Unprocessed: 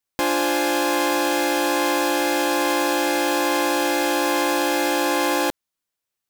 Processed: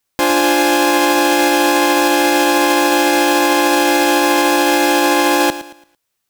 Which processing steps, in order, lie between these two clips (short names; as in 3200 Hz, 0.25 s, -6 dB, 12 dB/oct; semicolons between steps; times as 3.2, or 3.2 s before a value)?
maximiser +15 dB; lo-fi delay 0.112 s, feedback 35%, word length 7-bit, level -14 dB; gain -4.5 dB